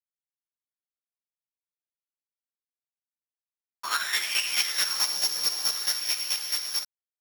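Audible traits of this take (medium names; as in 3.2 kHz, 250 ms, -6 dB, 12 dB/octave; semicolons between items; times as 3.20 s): a buzz of ramps at a fixed pitch in blocks of 8 samples; chopped level 4.6 Hz, depth 60%, duty 20%; a quantiser's noise floor 12-bit, dither none; a shimmering, thickened sound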